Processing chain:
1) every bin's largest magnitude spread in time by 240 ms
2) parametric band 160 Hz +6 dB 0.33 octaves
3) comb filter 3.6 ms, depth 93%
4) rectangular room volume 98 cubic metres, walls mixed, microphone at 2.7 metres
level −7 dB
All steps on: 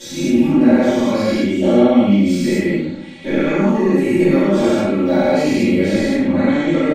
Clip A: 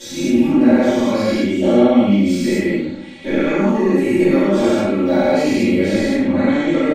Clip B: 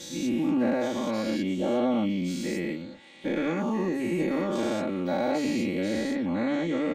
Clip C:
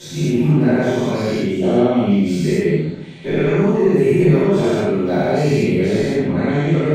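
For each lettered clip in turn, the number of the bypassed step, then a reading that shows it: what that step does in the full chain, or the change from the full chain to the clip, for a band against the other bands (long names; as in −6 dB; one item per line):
2, 125 Hz band −2.0 dB
4, echo-to-direct ratio 10.5 dB to none audible
3, 125 Hz band +7.5 dB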